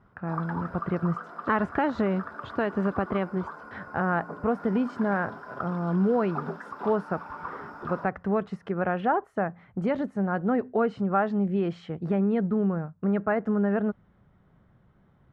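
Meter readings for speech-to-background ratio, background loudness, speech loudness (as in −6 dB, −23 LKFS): 12.0 dB, −40.0 LKFS, −28.0 LKFS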